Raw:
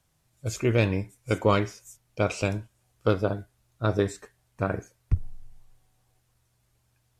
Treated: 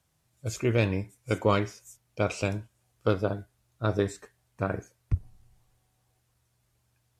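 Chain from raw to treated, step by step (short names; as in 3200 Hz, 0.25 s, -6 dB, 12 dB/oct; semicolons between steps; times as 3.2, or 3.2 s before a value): HPF 41 Hz; gain -2 dB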